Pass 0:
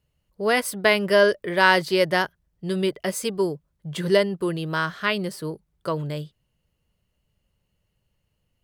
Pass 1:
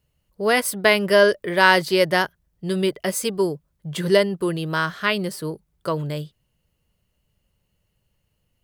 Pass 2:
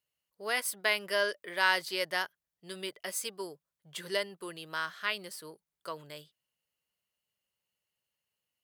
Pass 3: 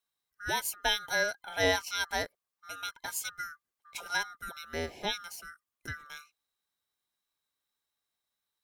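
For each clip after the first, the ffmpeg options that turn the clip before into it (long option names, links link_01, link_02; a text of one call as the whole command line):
ffmpeg -i in.wav -af "highshelf=frequency=9000:gain=5,volume=2dB" out.wav
ffmpeg -i in.wav -af "highpass=frequency=1300:poles=1,volume=-8.5dB" out.wav
ffmpeg -i in.wav -af "afftfilt=real='real(if(lt(b,960),b+48*(1-2*mod(floor(b/48),2)),b),0)':imag='imag(if(lt(b,960),b+48*(1-2*mod(floor(b/48),2)),b),0)':win_size=2048:overlap=0.75" out.wav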